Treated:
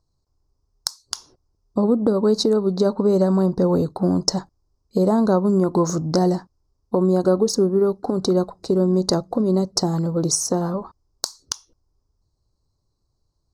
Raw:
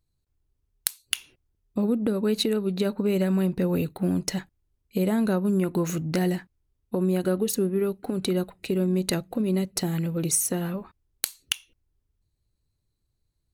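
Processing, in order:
drawn EQ curve 200 Hz 0 dB, 1,100 Hz +8 dB, 2,600 Hz −27 dB, 5,100 Hz +10 dB, 12,000 Hz −17 dB
level +4.5 dB

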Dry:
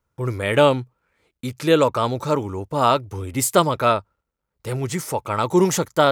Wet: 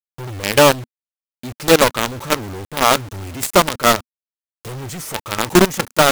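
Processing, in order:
log-companded quantiser 2 bits
dynamic equaliser 240 Hz, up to +3 dB, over −33 dBFS, Q 4.3
level −3.5 dB

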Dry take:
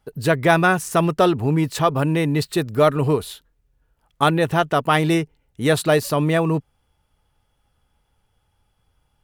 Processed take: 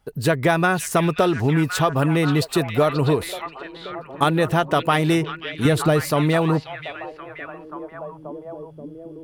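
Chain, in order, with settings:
0:05.65–0:06.05: low-shelf EQ 260 Hz +10 dB
downward compressor, threshold −16 dBFS, peak gain reduction 7.5 dB
echo through a band-pass that steps 532 ms, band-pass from 2,900 Hz, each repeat −0.7 octaves, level −4 dB
level +2 dB

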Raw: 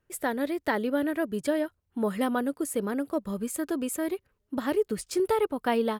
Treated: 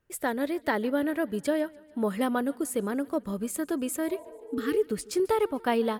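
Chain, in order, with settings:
healed spectral selection 0:04.12–0:04.76, 450–1,100 Hz both
feedback echo with a swinging delay time 146 ms, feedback 59%, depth 61 cents, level −24 dB

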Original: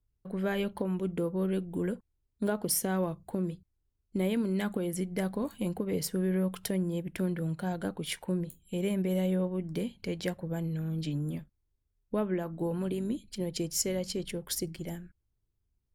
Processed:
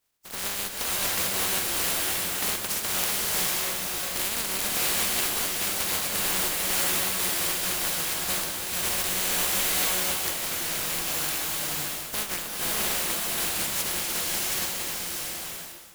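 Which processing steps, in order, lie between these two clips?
compressing power law on the bin magnitudes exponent 0.1
slow-attack reverb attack 660 ms, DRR −4 dB

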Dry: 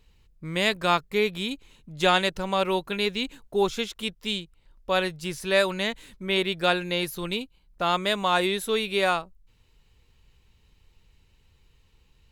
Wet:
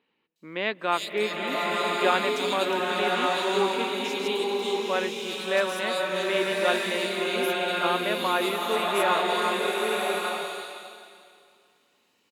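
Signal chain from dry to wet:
Chebyshev high-pass filter 250 Hz, order 3
multiband delay without the direct sound lows, highs 360 ms, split 3,300 Hz
slow-attack reverb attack 1,140 ms, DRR −2.5 dB
level −2 dB

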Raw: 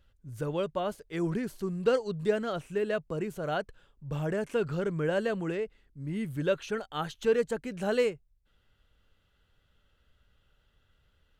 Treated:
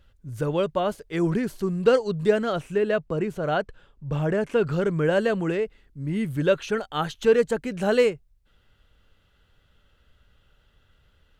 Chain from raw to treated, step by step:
high-shelf EQ 6,400 Hz −3 dB, from 0:02.76 −11.5 dB, from 0:04.67 −2.5 dB
level +7 dB

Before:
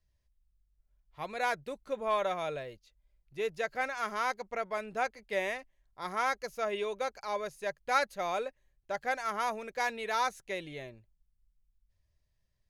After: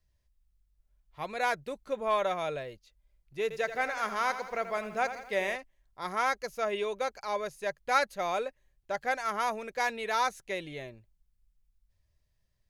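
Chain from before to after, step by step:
0:03.42–0:05.56: feedback echo at a low word length 84 ms, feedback 55%, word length 10 bits, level −11 dB
level +2 dB

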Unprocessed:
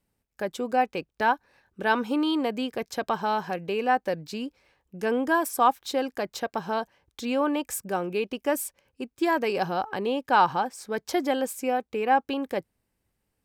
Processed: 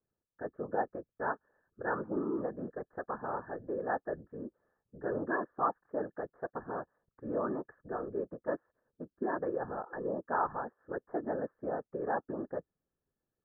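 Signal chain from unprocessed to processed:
random phases in short frames
Chebyshev low-pass with heavy ripple 1,800 Hz, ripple 6 dB
level −7 dB

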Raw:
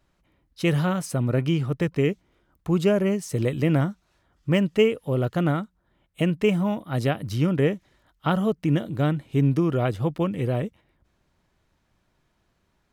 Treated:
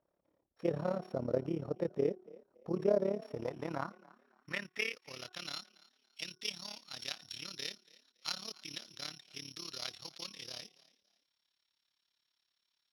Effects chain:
samples sorted by size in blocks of 8 samples
parametric band 550 Hz −3.5 dB 1.4 octaves
hum removal 367.6 Hz, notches 4
in parallel at −2 dB: brickwall limiter −20 dBFS, peak gain reduction 10.5 dB
on the sum: amplitude modulation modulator 35 Hz, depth 75%
band-pass filter sweep 540 Hz → 3,800 Hz, 0:02.97–0:05.58
echo with shifted repeats 282 ms, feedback 30%, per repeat +40 Hz, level −22 dB

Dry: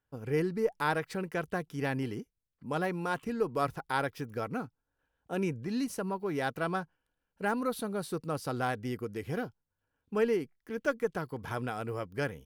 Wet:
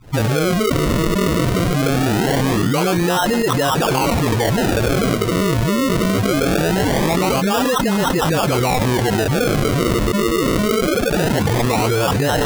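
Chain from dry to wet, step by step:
every frequency bin delayed by itself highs late, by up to 490 ms
bucket-brigade delay 444 ms, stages 4,096, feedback 44%, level −17.5 dB
sample-and-hold swept by an LFO 37×, swing 100% 0.22 Hz
envelope flattener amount 100%
level +7.5 dB

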